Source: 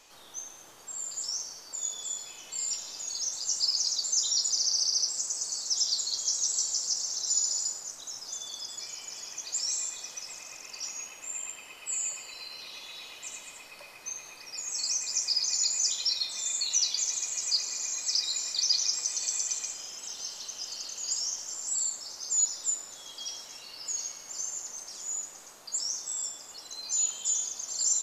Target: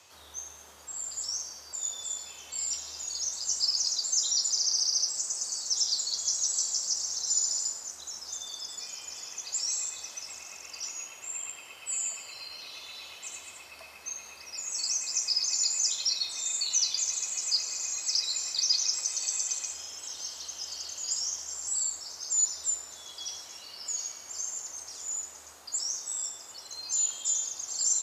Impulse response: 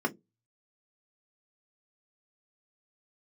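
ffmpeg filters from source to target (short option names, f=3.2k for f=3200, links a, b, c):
-af "afreqshift=74"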